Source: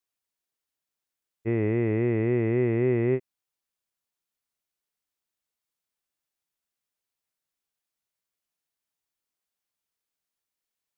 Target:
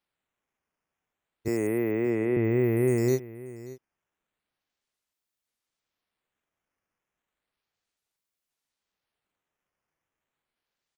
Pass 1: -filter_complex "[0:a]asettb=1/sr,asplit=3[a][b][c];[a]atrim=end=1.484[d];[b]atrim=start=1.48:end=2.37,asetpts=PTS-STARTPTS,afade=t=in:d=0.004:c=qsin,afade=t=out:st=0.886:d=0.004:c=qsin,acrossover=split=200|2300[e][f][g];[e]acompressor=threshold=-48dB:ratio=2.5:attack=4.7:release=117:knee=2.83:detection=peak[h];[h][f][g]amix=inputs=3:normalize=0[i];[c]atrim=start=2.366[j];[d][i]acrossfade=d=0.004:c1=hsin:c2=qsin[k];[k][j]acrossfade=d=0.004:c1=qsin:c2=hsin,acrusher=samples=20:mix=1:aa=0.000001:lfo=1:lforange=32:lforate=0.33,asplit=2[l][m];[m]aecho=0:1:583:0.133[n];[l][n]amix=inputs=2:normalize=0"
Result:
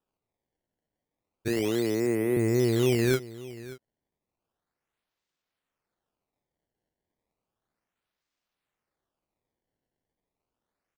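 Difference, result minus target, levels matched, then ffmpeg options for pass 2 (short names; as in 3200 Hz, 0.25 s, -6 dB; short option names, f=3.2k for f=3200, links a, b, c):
decimation with a swept rate: distortion +11 dB
-filter_complex "[0:a]asettb=1/sr,asplit=3[a][b][c];[a]atrim=end=1.484[d];[b]atrim=start=1.48:end=2.37,asetpts=PTS-STARTPTS,afade=t=in:d=0.004:c=qsin,afade=t=out:st=0.886:d=0.004:c=qsin,acrossover=split=200|2300[e][f][g];[e]acompressor=threshold=-48dB:ratio=2.5:attack=4.7:release=117:knee=2.83:detection=peak[h];[h][f][g]amix=inputs=3:normalize=0[i];[c]atrim=start=2.366[j];[d][i]acrossfade=d=0.004:c1=hsin:c2=qsin[k];[k][j]acrossfade=d=0.004:c1=qsin:c2=hsin,acrusher=samples=6:mix=1:aa=0.000001:lfo=1:lforange=9.6:lforate=0.33,asplit=2[l][m];[m]aecho=0:1:583:0.133[n];[l][n]amix=inputs=2:normalize=0"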